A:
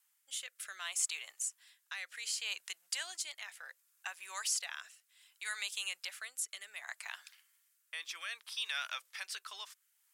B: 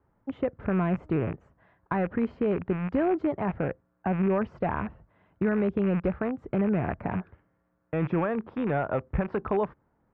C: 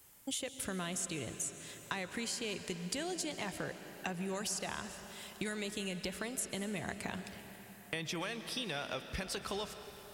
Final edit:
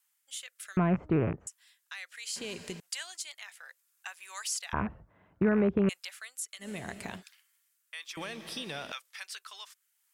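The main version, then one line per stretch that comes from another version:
A
0.77–1.47 s: from B
2.36–2.80 s: from C
4.73–5.89 s: from B
6.64–7.19 s: from C, crossfade 0.10 s
8.17–8.92 s: from C

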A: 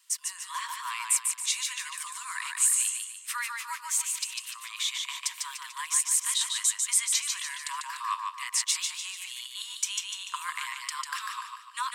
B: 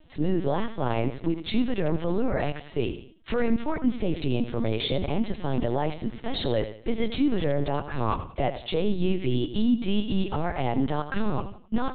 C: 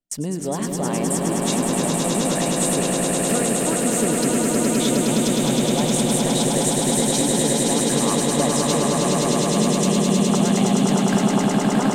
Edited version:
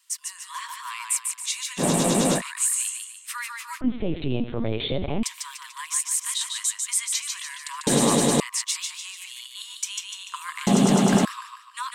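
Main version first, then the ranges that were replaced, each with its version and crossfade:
A
1.80–2.39 s: from C, crossfade 0.06 s
3.81–5.23 s: from B
7.87–8.40 s: from C
10.67–11.25 s: from C

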